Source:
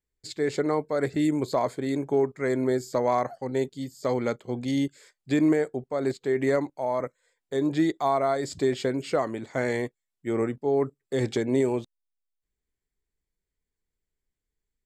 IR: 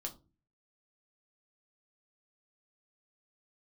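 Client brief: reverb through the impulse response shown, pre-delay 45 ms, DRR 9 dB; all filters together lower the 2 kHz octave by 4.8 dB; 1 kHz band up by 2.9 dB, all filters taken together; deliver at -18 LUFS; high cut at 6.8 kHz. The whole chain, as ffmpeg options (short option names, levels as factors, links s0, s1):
-filter_complex "[0:a]lowpass=6800,equalizer=f=1000:t=o:g=5.5,equalizer=f=2000:t=o:g=-7.5,asplit=2[s0][s1];[1:a]atrim=start_sample=2205,adelay=45[s2];[s1][s2]afir=irnorm=-1:irlink=0,volume=0.447[s3];[s0][s3]amix=inputs=2:normalize=0,volume=2.51"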